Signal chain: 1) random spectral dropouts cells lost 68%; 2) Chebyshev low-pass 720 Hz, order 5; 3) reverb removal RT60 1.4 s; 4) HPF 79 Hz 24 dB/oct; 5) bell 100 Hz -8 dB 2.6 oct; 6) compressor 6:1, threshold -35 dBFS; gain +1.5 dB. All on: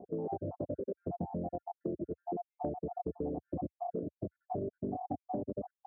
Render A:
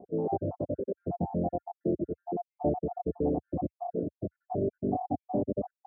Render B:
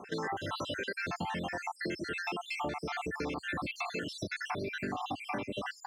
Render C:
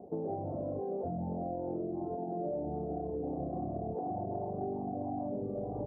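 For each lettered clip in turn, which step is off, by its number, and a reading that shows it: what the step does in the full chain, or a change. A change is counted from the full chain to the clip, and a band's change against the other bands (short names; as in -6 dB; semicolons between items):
6, momentary loudness spread change +2 LU; 2, crest factor change -2.5 dB; 1, crest factor change -5.5 dB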